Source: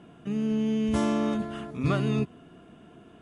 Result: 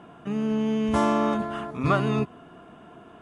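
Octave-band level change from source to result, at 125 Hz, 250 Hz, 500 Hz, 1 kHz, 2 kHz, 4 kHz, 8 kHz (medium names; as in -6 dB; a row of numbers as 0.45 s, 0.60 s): +0.5 dB, +1.0 dB, +4.5 dB, +9.5 dB, +5.5 dB, +2.0 dB, +0.5 dB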